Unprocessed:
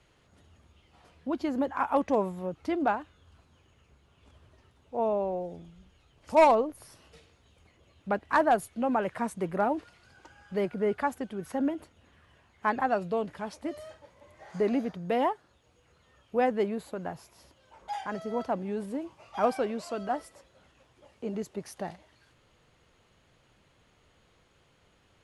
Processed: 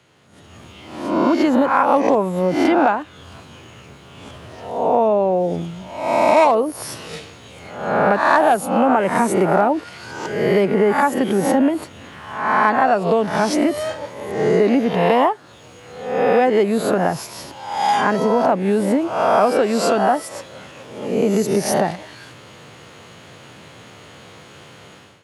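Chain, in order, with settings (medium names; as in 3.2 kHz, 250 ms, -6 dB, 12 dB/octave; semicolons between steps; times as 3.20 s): reverse spectral sustain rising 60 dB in 0.70 s; compression 4:1, threshold -36 dBFS, peak gain reduction 17.5 dB; high-pass 100 Hz 24 dB/octave; level rider gain up to 15 dB; trim +6.5 dB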